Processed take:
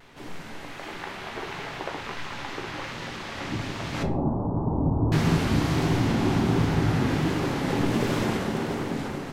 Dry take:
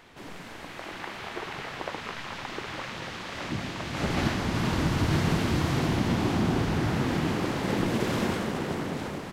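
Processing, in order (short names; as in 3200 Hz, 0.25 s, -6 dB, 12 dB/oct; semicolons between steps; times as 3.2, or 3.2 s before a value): 4.03–5.12 steep low-pass 1000 Hz 48 dB/oct; reverb RT60 0.45 s, pre-delay 7 ms, DRR 4.5 dB; vibrato 1.4 Hz 44 cents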